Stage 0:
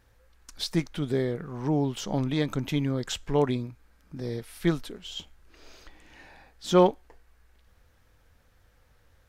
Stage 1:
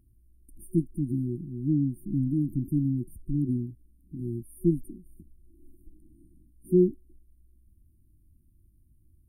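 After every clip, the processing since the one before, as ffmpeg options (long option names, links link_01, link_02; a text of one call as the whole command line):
ffmpeg -i in.wav -af "highshelf=frequency=8000:gain=-5.5,afftfilt=real='re*(1-between(b*sr/4096,370,8700))':imag='im*(1-between(b*sr/4096,370,8700))':win_size=4096:overlap=0.75,volume=1.5dB" out.wav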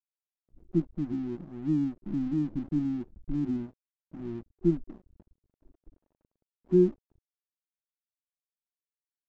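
ffmpeg -i in.wav -af "equalizer=frequency=130:width_type=o:width=0.29:gain=-14.5,aresample=16000,aeval=exprs='sgn(val(0))*max(abs(val(0))-0.00355,0)':channel_layout=same,aresample=44100" out.wav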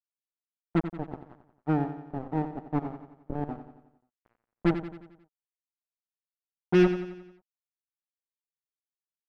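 ffmpeg -i in.wav -af "acrusher=bits=3:mix=0:aa=0.5,aecho=1:1:89|178|267|356|445|534:0.299|0.155|0.0807|0.042|0.0218|0.0114" out.wav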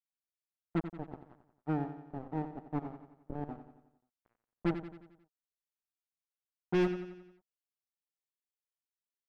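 ffmpeg -i in.wav -af "asoftclip=type=hard:threshold=-16.5dB,volume=-7dB" out.wav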